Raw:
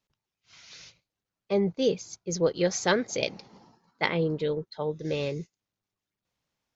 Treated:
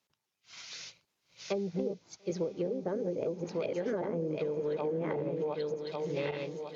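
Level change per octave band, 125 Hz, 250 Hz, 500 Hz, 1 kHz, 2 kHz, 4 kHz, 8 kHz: -5.5 dB, -4.5 dB, -3.5 dB, -7.0 dB, -12.5 dB, -11.0 dB, n/a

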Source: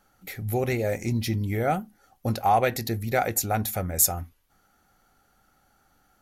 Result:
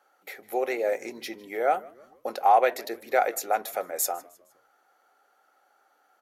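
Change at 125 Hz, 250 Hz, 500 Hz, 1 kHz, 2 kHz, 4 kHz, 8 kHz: under -35 dB, -10.0 dB, +1.5 dB, +2.0 dB, -0.5 dB, -4.5 dB, -7.0 dB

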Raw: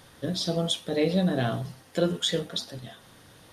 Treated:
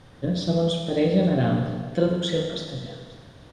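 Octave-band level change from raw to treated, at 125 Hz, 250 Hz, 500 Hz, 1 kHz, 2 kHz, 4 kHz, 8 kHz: +6.0, +5.0, +4.5, +2.5, 0.0, -2.0, -6.0 dB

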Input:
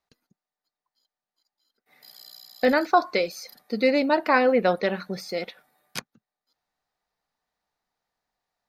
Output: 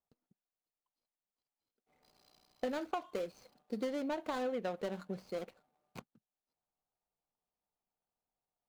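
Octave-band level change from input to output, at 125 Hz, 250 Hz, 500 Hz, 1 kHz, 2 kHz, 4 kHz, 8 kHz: -11.5, -14.0, -15.5, -18.0, -21.5, -17.5, -15.5 dB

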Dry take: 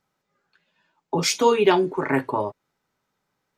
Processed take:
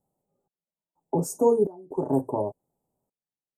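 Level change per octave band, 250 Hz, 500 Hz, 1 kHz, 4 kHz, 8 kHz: -3.0 dB, -3.0 dB, -9.0 dB, under -25 dB, -9.0 dB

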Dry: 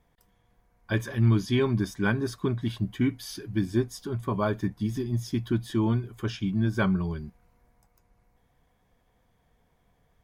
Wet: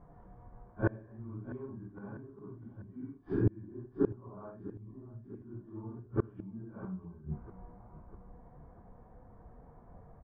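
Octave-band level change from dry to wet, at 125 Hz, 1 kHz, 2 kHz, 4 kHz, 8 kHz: -12.0 dB, -14.0 dB, -15.5 dB, under -40 dB, under -35 dB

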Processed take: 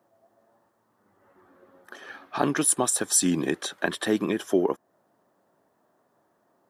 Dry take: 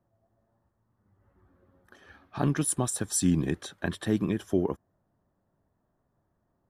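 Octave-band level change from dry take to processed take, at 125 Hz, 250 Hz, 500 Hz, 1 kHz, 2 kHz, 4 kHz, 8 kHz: -7.0, +1.5, +5.5, +7.5, +8.0, +8.0, +7.0 dB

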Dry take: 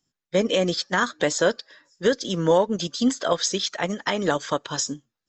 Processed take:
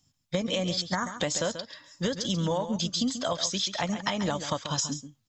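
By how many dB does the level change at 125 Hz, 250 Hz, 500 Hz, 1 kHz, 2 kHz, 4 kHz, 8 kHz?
-0.5, -4.5, -9.5, -6.0, -8.5, -2.0, -3.0 dB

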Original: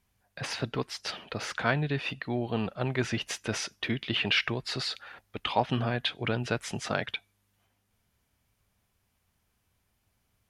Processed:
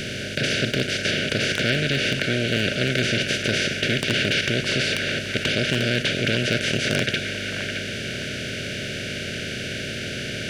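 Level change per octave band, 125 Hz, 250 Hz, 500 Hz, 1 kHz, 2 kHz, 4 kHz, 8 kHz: +8.0, +8.0, +8.5, -2.0, +11.5, +11.0, +10.5 dB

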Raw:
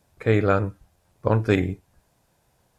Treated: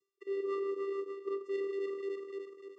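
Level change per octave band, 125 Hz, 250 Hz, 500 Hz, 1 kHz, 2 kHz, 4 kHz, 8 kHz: under -40 dB, -16.5 dB, -8.5 dB, -17.0 dB, -19.5 dB, under -15 dB, n/a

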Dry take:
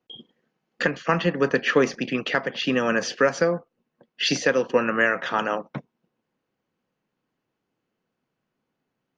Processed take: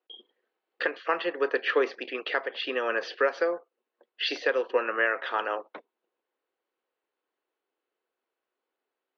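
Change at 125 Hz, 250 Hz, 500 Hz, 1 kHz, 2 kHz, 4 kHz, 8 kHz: under -30 dB, -13.5 dB, -4.5 dB, -4.0 dB, -4.5 dB, -5.5 dB, n/a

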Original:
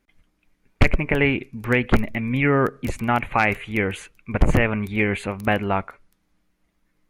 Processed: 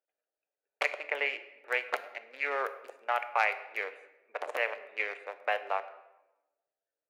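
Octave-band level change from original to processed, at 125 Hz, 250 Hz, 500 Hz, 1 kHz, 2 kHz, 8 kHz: under -40 dB, -36.0 dB, -12.0 dB, -8.0 dB, -8.5 dB, under -10 dB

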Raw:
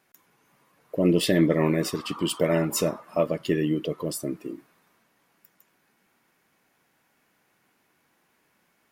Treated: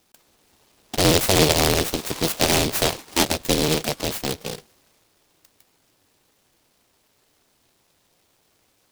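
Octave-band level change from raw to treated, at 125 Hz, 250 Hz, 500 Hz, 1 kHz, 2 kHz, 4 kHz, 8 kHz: +3.0, -1.0, +2.0, +9.5, +8.5, +12.0, +11.5 dB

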